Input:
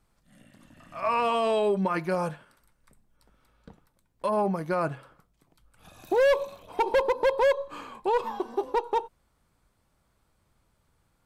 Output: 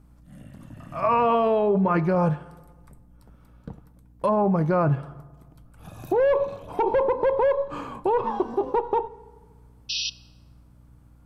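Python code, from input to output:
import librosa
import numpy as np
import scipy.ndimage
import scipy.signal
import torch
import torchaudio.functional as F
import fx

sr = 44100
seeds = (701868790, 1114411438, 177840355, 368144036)

p1 = fx.env_lowpass_down(x, sr, base_hz=2600.0, full_db=-21.0)
p2 = fx.graphic_eq(p1, sr, hz=(125, 2000, 4000, 8000), db=(10, -5, -7, -5))
p3 = fx.over_compress(p2, sr, threshold_db=-27.0, ratio=-0.5)
p4 = p2 + (p3 * 10.0 ** (-1.0 / 20.0))
p5 = fx.add_hum(p4, sr, base_hz=60, snr_db=28)
p6 = fx.spec_paint(p5, sr, seeds[0], shape='noise', start_s=9.89, length_s=0.21, low_hz=2500.0, high_hz=5900.0, level_db=-28.0)
y = fx.rev_fdn(p6, sr, rt60_s=1.5, lf_ratio=0.95, hf_ratio=0.6, size_ms=21.0, drr_db=17.5)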